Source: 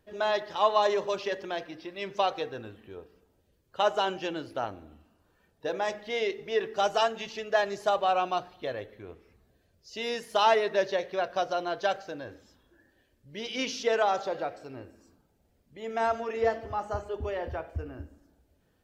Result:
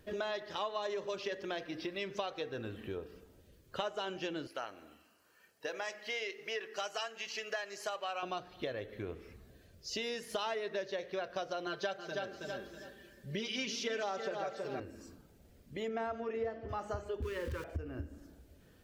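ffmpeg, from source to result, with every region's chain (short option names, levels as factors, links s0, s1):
-filter_complex "[0:a]asettb=1/sr,asplit=3[s0][s1][s2];[s0]atrim=end=4.474[s3];[s1]atrim=start=4.47:end=8.23,asetpts=PTS-STARTPTS,afade=t=in:d=0.004:c=qsin,afade=t=out:st=3.756:d=0.004:c=qsin,highpass=f=1400:p=1,bandreject=f=3600:w=5.6[s4];[s2]atrim=start=8.226[s5];[s3][s4]acrossfade=d=0.004:c1=hsin:c2=qsin[s6];[s6][s5]acrossfade=d=0.004:c1=qsin:c2=hsin,asettb=1/sr,asplit=3[s7][s8][s9];[s7]atrim=end=11.664[s10];[s8]atrim=start=11.66:end=14.8,asetpts=PTS-STARTPTS,afade=t=in:d=0.004:c=qsin,afade=t=out:st=3.136:d=0.004:c=qsin,highpass=66,aecho=1:1:5.1:0.85,atrim=end_sample=138474,aecho=1:1:323|646|969:0.376|0.0677|0.0122,atrim=end_sample=138474[s11];[s9]atrim=start=14.796[s12];[s10][s11]acrossfade=d=0.004:c1=hsin:c2=qsin[s13];[s13][s12]acrossfade=d=0.004:c1=qsin:c2=hsin,asettb=1/sr,asplit=3[s14][s15][s16];[s14]atrim=end=15.884[s17];[s15]atrim=start=15.88:end=16.69,asetpts=PTS-STARTPTS,afade=t=in:d=0.004:c=qsin,afade=t=out:st=0.806:d=0.004:c=qsin,highpass=f=300:p=1,aemphasis=mode=reproduction:type=riaa[s18];[s16]atrim=start=16.686[s19];[s17][s18]acrossfade=d=0.004:c1=hsin:c2=qsin[s20];[s20][s19]acrossfade=d=0.004:c1=qsin:c2=hsin,asettb=1/sr,asplit=3[s21][s22][s23];[s21]atrim=end=17.224[s24];[s22]atrim=start=17.22:end=17.64,asetpts=PTS-STARTPTS,afade=t=in:d=0.004:c=qsin,afade=t=out:st=0.416:d=0.004:c=qsin,aeval=exprs='val(0)+0.5*0.00841*sgn(val(0))':c=same,asuperstop=centerf=710:order=12:qfactor=2[s25];[s23]atrim=start=17.636[s26];[s24][s25]acrossfade=d=0.004:c1=hsin:c2=qsin[s27];[s27][s26]acrossfade=d=0.004:c1=qsin:c2=hsin,equalizer=f=840:t=o:w=0.74:g=-6,acompressor=threshold=0.00562:ratio=5,volume=2.51"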